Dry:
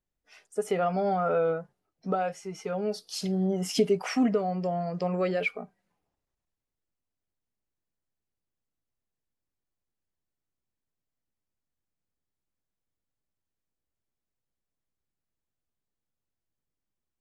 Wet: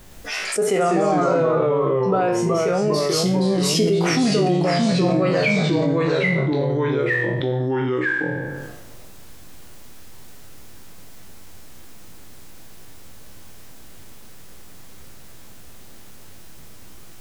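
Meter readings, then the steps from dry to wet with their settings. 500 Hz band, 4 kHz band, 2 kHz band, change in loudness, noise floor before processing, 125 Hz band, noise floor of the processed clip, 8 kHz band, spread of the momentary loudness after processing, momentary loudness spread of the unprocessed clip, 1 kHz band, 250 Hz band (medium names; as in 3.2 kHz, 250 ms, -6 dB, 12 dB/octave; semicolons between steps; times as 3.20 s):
+10.5 dB, +14.0 dB, +15.5 dB, +9.0 dB, under -85 dBFS, +14.5 dB, -38 dBFS, +14.0 dB, 5 LU, 10 LU, +8.5 dB, +11.0 dB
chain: spectral sustain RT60 0.47 s; ever faster or slower copies 112 ms, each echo -2 st, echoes 3; level flattener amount 70%; trim +1 dB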